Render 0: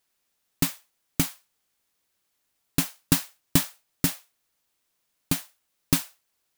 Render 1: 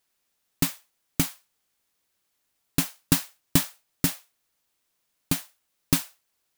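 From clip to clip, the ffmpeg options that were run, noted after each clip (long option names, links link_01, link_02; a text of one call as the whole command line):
ffmpeg -i in.wav -af anull out.wav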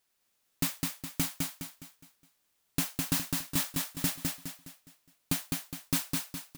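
ffmpeg -i in.wav -af "alimiter=limit=-13.5dB:level=0:latency=1:release=42,aecho=1:1:207|414|621|828|1035:0.708|0.283|0.113|0.0453|0.0181,volume=-1.5dB" out.wav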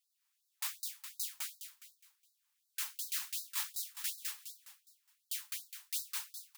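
ffmpeg -i in.wav -af "aeval=exprs='0.0841*(abs(mod(val(0)/0.0841+3,4)-2)-1)':channel_layout=same,afftfilt=real='re*gte(b*sr/1024,760*pow(3800/760,0.5+0.5*sin(2*PI*2.7*pts/sr)))':imag='im*gte(b*sr/1024,760*pow(3800/760,0.5+0.5*sin(2*PI*2.7*pts/sr)))':win_size=1024:overlap=0.75,volume=-5dB" out.wav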